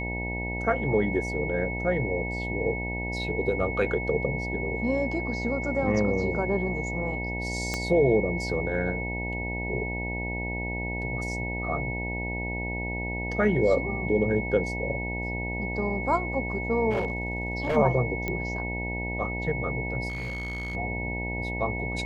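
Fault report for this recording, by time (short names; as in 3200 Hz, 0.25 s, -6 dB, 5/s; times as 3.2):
buzz 60 Hz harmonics 16 -33 dBFS
tone 2200 Hz -33 dBFS
7.74 pop -14 dBFS
16.9–17.77 clipped -22 dBFS
18.28 pop -16 dBFS
20.08–20.75 clipped -29.5 dBFS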